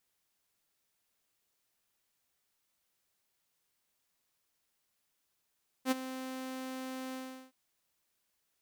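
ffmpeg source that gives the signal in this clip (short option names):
-f lavfi -i "aevalsrc='0.075*(2*mod(260*t,1)-1)':d=1.667:s=44100,afade=t=in:d=0.063,afade=t=out:st=0.063:d=0.02:silence=0.2,afade=t=out:st=1.29:d=0.377"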